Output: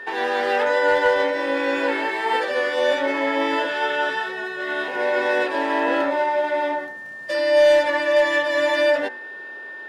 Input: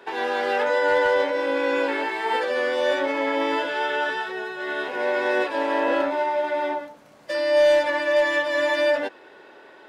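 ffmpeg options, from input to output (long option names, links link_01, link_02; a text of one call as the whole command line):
ffmpeg -i in.wav -af "bandreject=frequency=62.4:width_type=h:width=4,bandreject=frequency=124.8:width_type=h:width=4,bandreject=frequency=187.2:width_type=h:width=4,bandreject=frequency=249.6:width_type=h:width=4,bandreject=frequency=312:width_type=h:width=4,bandreject=frequency=374.4:width_type=h:width=4,bandreject=frequency=436.8:width_type=h:width=4,bandreject=frequency=499.2:width_type=h:width=4,bandreject=frequency=561.6:width_type=h:width=4,bandreject=frequency=624:width_type=h:width=4,bandreject=frequency=686.4:width_type=h:width=4,bandreject=frequency=748.8:width_type=h:width=4,bandreject=frequency=811.2:width_type=h:width=4,bandreject=frequency=873.6:width_type=h:width=4,bandreject=frequency=936:width_type=h:width=4,bandreject=frequency=998.4:width_type=h:width=4,bandreject=frequency=1060.8:width_type=h:width=4,bandreject=frequency=1123.2:width_type=h:width=4,bandreject=frequency=1185.6:width_type=h:width=4,bandreject=frequency=1248:width_type=h:width=4,bandreject=frequency=1310.4:width_type=h:width=4,bandreject=frequency=1372.8:width_type=h:width=4,bandreject=frequency=1435.2:width_type=h:width=4,bandreject=frequency=1497.6:width_type=h:width=4,bandreject=frequency=1560:width_type=h:width=4,bandreject=frequency=1622.4:width_type=h:width=4,bandreject=frequency=1684.8:width_type=h:width=4,bandreject=frequency=1747.2:width_type=h:width=4,bandreject=frequency=1809.6:width_type=h:width=4,bandreject=frequency=1872:width_type=h:width=4,bandreject=frequency=1934.4:width_type=h:width=4,bandreject=frequency=1996.8:width_type=h:width=4,bandreject=frequency=2059.2:width_type=h:width=4,aeval=exprs='val(0)+0.0158*sin(2*PI*1800*n/s)':channel_layout=same,volume=2.5dB" out.wav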